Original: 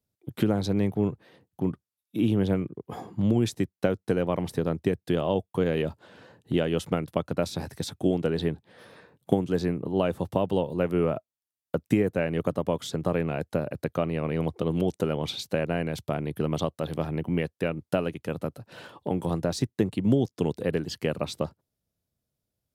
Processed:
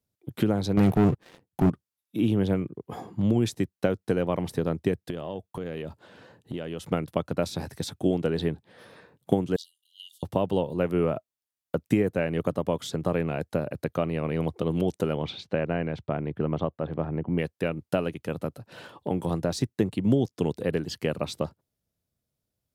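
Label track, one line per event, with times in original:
0.770000	1.700000	waveshaping leveller passes 3
5.100000	6.900000	compression 3:1, threshold -32 dBFS
9.560000	10.230000	brick-wall FIR high-pass 2.8 kHz
15.220000	17.370000	low-pass 3.3 kHz -> 1.4 kHz

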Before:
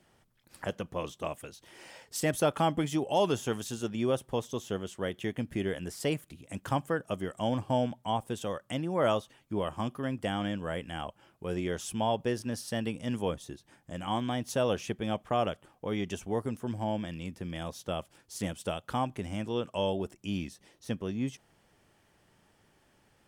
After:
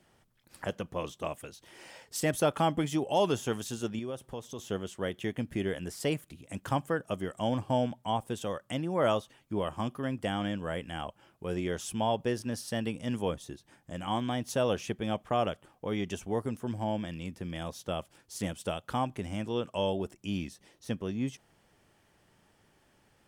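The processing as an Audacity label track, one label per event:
3.990000	4.590000	compression 2:1, threshold -41 dBFS

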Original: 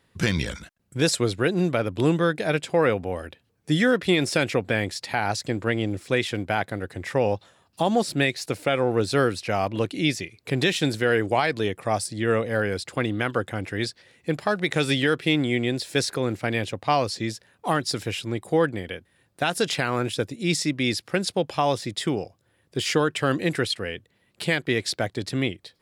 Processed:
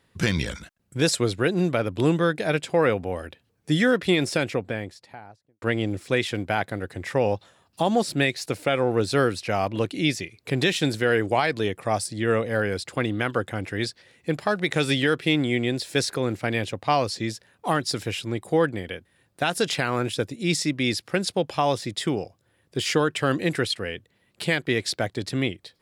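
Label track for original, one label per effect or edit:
4.040000	5.620000	studio fade out

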